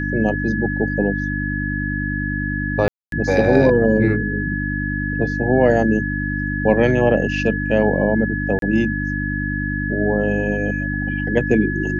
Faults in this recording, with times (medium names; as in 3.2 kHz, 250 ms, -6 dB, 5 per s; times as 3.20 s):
hum 50 Hz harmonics 6 -24 dBFS
whine 1.7 kHz -25 dBFS
2.88–3.12 s: dropout 242 ms
8.59–8.62 s: dropout 32 ms